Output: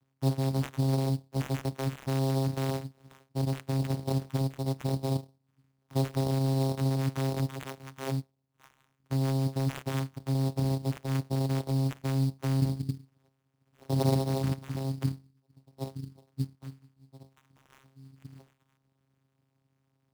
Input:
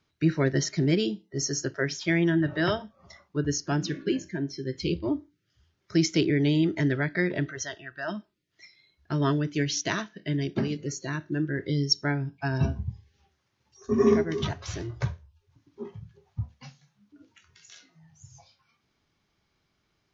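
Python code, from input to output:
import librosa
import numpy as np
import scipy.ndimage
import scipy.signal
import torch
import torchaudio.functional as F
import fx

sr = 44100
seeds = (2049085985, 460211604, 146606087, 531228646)

p1 = fx.over_compress(x, sr, threshold_db=-29.0, ratio=-0.5)
p2 = x + (p1 * librosa.db_to_amplitude(-1.0))
p3 = fx.vocoder(p2, sr, bands=4, carrier='saw', carrier_hz=134.0)
p4 = fx.sample_hold(p3, sr, seeds[0], rate_hz=4700.0, jitter_pct=20)
y = p4 * librosa.db_to_amplitude(-5.0)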